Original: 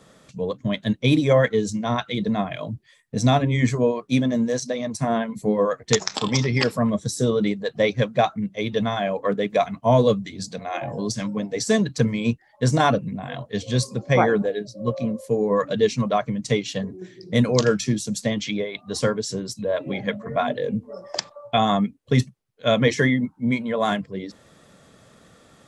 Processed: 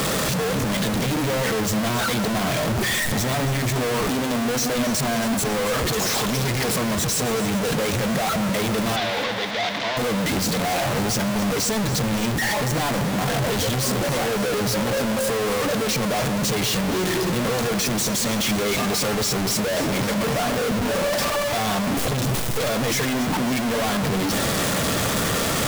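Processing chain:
sign of each sample alone
0:08.96–0:09.97: loudspeaker in its box 370–5,500 Hz, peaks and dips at 400 Hz −5 dB, 600 Hz −3 dB, 1,200 Hz −4 dB, 2,000 Hz +5 dB, 3,600 Hz +7 dB
delay that swaps between a low-pass and a high-pass 137 ms, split 1,800 Hz, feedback 82%, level −11 dB

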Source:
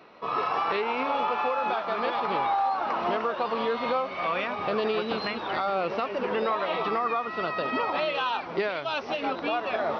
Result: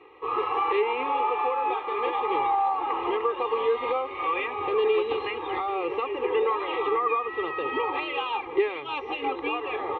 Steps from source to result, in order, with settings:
high-frequency loss of the air 150 metres
phaser with its sweep stopped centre 1,000 Hz, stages 8
comb filter 2.5 ms, depth 65%
level +2 dB

